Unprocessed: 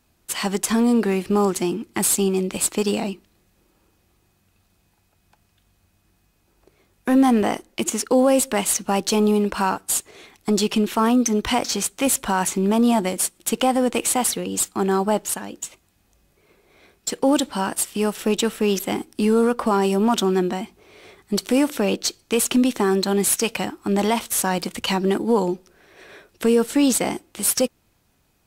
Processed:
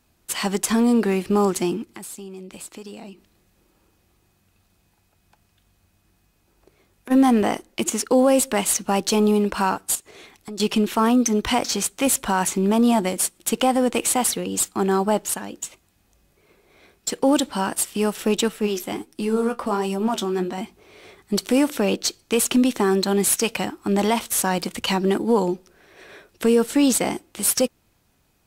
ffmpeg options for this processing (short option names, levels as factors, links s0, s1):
-filter_complex "[0:a]asplit=3[s0][s1][s2];[s0]afade=t=out:st=1.84:d=0.02[s3];[s1]acompressor=threshold=0.01:ratio=3:attack=3.2:release=140:knee=1:detection=peak,afade=t=in:st=1.84:d=0.02,afade=t=out:st=7.1:d=0.02[s4];[s2]afade=t=in:st=7.1:d=0.02[s5];[s3][s4][s5]amix=inputs=3:normalize=0,asettb=1/sr,asplit=3[s6][s7][s8];[s6]atrim=end=9.954[s9];[s7]atrim=start=9.95:end=10.6,asetpts=PTS-STARTPTS,afade=t=in:d=0.004:c=qsin,afade=t=out:st=0.646:d=0.004:c=qsin,acompressor=threshold=0.0126:ratio=2.5:attack=3.2:release=140:knee=1:detection=peak[s10];[s8]atrim=start=10.596[s11];[s9][s10]acrossfade=d=0.004:c1=hsin:c2=qsin[s12];[s12][s11]acrossfade=d=0.004:c1=qsin:c2=hsin,asettb=1/sr,asplit=3[s13][s14][s15];[s13]atrim=end=18.484[s16];[s14]atrim=start=18.48:end=20.58,asetpts=PTS-STARTPTS,afade=t=in:d=0.004:c=qsin,afade=t=out:st=2.096:d=0.004:c=qsin,flanger=delay=5.9:depth=8.2:regen=45:speed=1.4:shape=sinusoidal[s17];[s15]atrim=start=20.576[s18];[s16][s17]acrossfade=d=0.004:c1=hsin:c2=qsin[s19];[s19][s18]acrossfade=d=0.004:c1=qsin:c2=hsin"